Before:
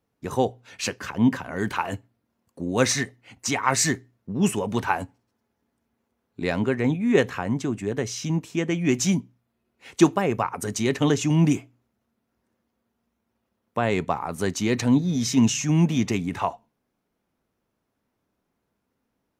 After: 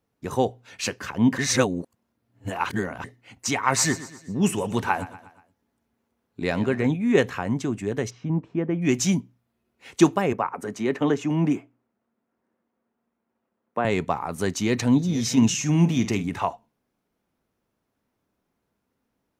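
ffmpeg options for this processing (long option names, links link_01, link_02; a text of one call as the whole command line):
ffmpeg -i in.wav -filter_complex "[0:a]asettb=1/sr,asplit=3[link_01][link_02][link_03];[link_01]atrim=end=3.554[link_04];[link_02]atrim=start=3.55:end=6.87,asetpts=PTS-STARTPTS,afade=type=in:duration=0.004:curve=qsin,afade=type=out:start_time=3.316:duration=0.004:curve=qsin,aecho=1:1:120|240|360|480:0.158|0.0777|0.0381|0.0186,atrim=end_sample=146412[link_05];[link_03]atrim=start=6.866[link_06];[link_04][link_05]acrossfade=duration=0.004:curve1=hsin:curve2=qsin[link_07];[link_07][link_06]acrossfade=duration=0.004:curve1=qsin:curve2=hsin,asplit=3[link_08][link_09][link_10];[link_08]afade=type=out:start_time=8.09:duration=0.02[link_11];[link_09]lowpass=1200,afade=type=in:start_time=8.09:duration=0.02,afade=type=out:start_time=8.81:duration=0.02[link_12];[link_10]afade=type=in:start_time=8.81:duration=0.02[link_13];[link_11][link_12][link_13]amix=inputs=3:normalize=0,asettb=1/sr,asplit=3[link_14][link_15][link_16];[link_14]atrim=end=10.334[link_17];[link_15]atrim=start=10.33:end=13.85,asetpts=PTS-STARTPTS,afade=type=in:duration=0.004:curve=qsin,afade=type=out:start_time=3.516:duration=0.004:curve=qsin,acrossover=split=170 2300:gain=0.178 1 0.224[link_18][link_19][link_20];[link_18][link_19][link_20]amix=inputs=3:normalize=0[link_21];[link_16]atrim=start=13.846[link_22];[link_17][link_21]acrossfade=duration=0.004:curve1=hsin:curve2=qsin[link_23];[link_23][link_22]acrossfade=duration=0.004:curve1=qsin:curve2=hsin,asplit=2[link_24][link_25];[link_25]afade=type=in:start_time=14.52:duration=0.01,afade=type=out:start_time=15.07:duration=0.01,aecho=0:1:470|940:0.199526|0.0199526[link_26];[link_24][link_26]amix=inputs=2:normalize=0,asplit=3[link_27][link_28][link_29];[link_27]afade=type=out:start_time=15.64:duration=0.02[link_30];[link_28]asplit=2[link_31][link_32];[link_32]adelay=48,volume=-12dB[link_33];[link_31][link_33]amix=inputs=2:normalize=0,afade=type=in:start_time=15.64:duration=0.02,afade=type=out:start_time=16.3:duration=0.02[link_34];[link_29]afade=type=in:start_time=16.3:duration=0.02[link_35];[link_30][link_34][link_35]amix=inputs=3:normalize=0,asplit=3[link_36][link_37][link_38];[link_36]atrim=end=1.382[link_39];[link_37]atrim=start=1.378:end=3.042,asetpts=PTS-STARTPTS,areverse[link_40];[link_38]atrim=start=3.038[link_41];[link_39][link_40]acrossfade=duration=0.004:curve1=hsin:curve2=hsin[link_42];[link_42][link_41]acrossfade=duration=0.004:curve1=hsin:curve2=hsin" out.wav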